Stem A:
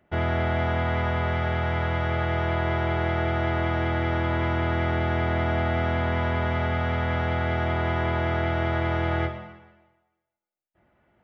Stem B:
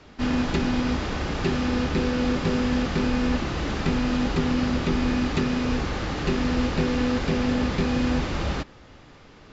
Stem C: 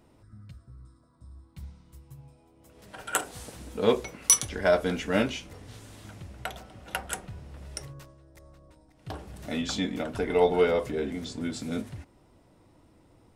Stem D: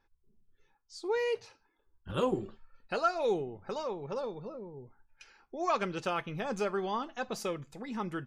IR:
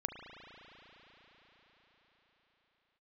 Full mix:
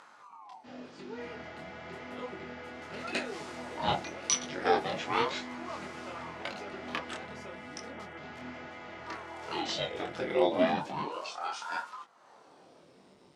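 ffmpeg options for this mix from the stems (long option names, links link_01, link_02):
-filter_complex "[0:a]lowpass=frequency=2700:width_type=q:width=2.1,adelay=1050,volume=-17dB[link_01];[1:a]adelay=450,volume=-19dB,asplit=3[link_02][link_03][link_04];[link_02]atrim=end=7.24,asetpts=PTS-STARTPTS,afade=type=out:start_time=7.236:duration=0.004:curve=hsin[link_05];[link_03]atrim=start=7.24:end=8.17,asetpts=PTS-STARTPTS,volume=0[link_06];[link_04]atrim=start=8.17,asetpts=PTS-STARTPTS,afade=type=in:duration=0.004:curve=hsin[link_07];[link_05][link_06][link_07]concat=n=3:v=0:a=1[link_08];[2:a]acrossover=split=5600[link_09][link_10];[link_10]acompressor=threshold=-51dB:ratio=4:attack=1:release=60[link_11];[link_09][link_11]amix=inputs=2:normalize=0,equalizer=frequency=4400:width_type=o:width=1.4:gain=6,aeval=exprs='val(0)*sin(2*PI*620*n/s+620*0.9/0.34*sin(2*PI*0.34*n/s))':channel_layout=same,volume=1.5dB[link_12];[3:a]volume=-10.5dB[link_13];[link_01][link_08][link_12][link_13]amix=inputs=4:normalize=0,acompressor=mode=upward:threshold=-44dB:ratio=2.5,flanger=delay=20:depth=6.9:speed=0.91,highpass=200,lowpass=7900"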